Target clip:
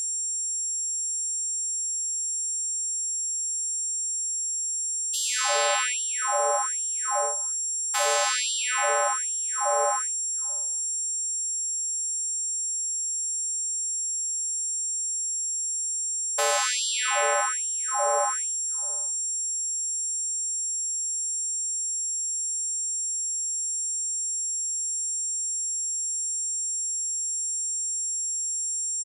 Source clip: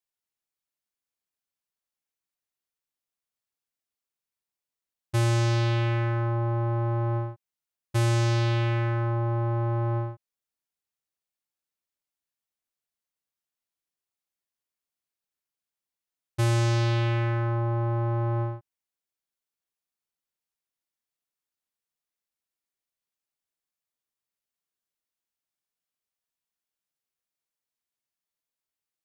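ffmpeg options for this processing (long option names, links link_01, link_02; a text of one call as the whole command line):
ffmpeg -i in.wav -filter_complex "[0:a]equalizer=frequency=2200:width_type=o:width=0.77:gain=-2.5,alimiter=limit=-24dB:level=0:latency=1:release=238,acrossover=split=120[link_01][link_02];[link_02]dynaudnorm=framelen=230:gausssize=11:maxgain=15.5dB[link_03];[link_01][link_03]amix=inputs=2:normalize=0,aeval=exprs='val(0)+0.0631*sin(2*PI*7500*n/s)':channel_layout=same,asplit=3[link_04][link_05][link_06];[link_05]asetrate=33038,aresample=44100,atempo=1.33484,volume=-16dB[link_07];[link_06]asetrate=55563,aresample=44100,atempo=0.793701,volume=-13dB[link_08];[link_04][link_07][link_08]amix=inputs=3:normalize=0,asplit=2[link_09][link_10];[link_10]adelay=506,lowpass=frequency=1700:poles=1,volume=-21dB,asplit=2[link_11][link_12];[link_12]adelay=506,lowpass=frequency=1700:poles=1,volume=0.17[link_13];[link_09][link_11][link_13]amix=inputs=3:normalize=0,afftfilt=real='re*gte(b*sr/1024,390*pow(2900/390,0.5+0.5*sin(2*PI*1.2*pts/sr)))':imag='im*gte(b*sr/1024,390*pow(2900/390,0.5+0.5*sin(2*PI*1.2*pts/sr)))':win_size=1024:overlap=0.75,volume=-2.5dB" out.wav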